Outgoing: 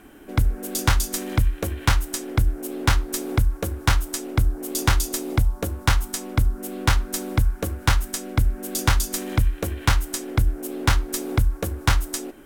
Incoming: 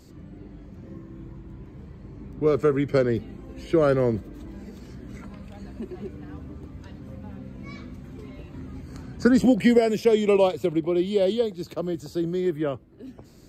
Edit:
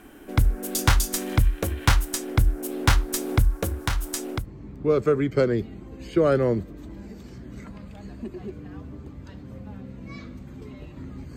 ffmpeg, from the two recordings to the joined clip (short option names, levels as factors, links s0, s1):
-filter_complex "[0:a]asettb=1/sr,asplit=3[s0][s1][s2];[s0]atrim=end=3.694[s3];[s1]atrim=start=3.69:end=4.47,asetpts=PTS-STARTPTS,afade=t=in:d=0.004:c=qsin,afade=t=out:st=0.776:d=0.004:c=qsin,acompressor=threshold=0.0708:ratio=2.5:attack=3.2:release=140:knee=1:detection=peak[s4];[s2]atrim=start=4.466[s5];[s3][s4]acrossfade=d=0.004:c1=hsin:c2=qsin[s6];[s6][s5]acrossfade=d=0.004:c1=qsin:c2=hsin,apad=whole_dur=11.36,atrim=end=11.36,atrim=end=4.47,asetpts=PTS-STARTPTS[s7];[1:a]atrim=start=1.92:end=8.93,asetpts=PTS-STARTPTS[s8];[s7][s8]acrossfade=d=0.12:c1=tri:c2=tri"